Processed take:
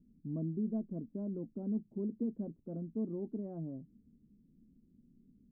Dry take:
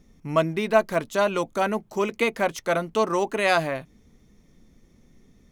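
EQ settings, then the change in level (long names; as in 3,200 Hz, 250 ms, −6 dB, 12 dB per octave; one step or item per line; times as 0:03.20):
transistor ladder low-pass 290 Hz, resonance 45%
low-shelf EQ 130 Hz −8.5 dB
+1.0 dB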